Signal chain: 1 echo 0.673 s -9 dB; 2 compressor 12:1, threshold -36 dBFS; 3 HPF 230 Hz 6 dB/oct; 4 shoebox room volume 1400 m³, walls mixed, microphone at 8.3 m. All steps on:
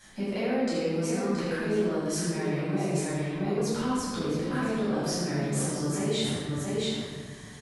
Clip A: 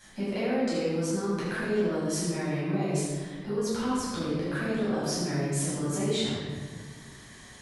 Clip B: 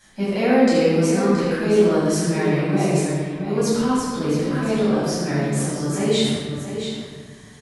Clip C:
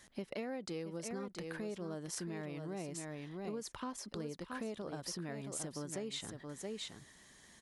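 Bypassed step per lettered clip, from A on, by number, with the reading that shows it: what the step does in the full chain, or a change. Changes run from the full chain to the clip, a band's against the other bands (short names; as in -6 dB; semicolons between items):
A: 1, momentary loudness spread change +7 LU; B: 2, mean gain reduction 6.0 dB; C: 4, crest factor change +4.5 dB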